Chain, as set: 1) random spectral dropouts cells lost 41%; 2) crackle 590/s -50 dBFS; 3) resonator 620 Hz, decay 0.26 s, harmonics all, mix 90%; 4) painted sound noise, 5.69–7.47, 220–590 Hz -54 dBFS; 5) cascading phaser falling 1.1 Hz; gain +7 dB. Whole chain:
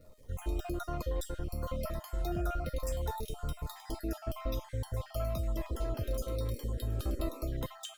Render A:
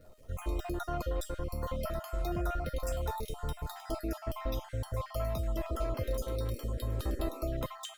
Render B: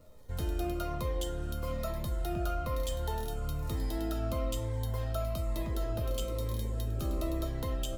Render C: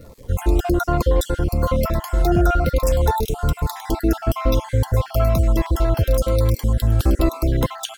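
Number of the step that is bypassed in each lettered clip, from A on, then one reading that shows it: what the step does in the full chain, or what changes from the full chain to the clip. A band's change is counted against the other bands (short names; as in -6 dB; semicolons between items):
5, 1 kHz band +2.5 dB; 1, crest factor change -1.5 dB; 3, 8 kHz band -3.5 dB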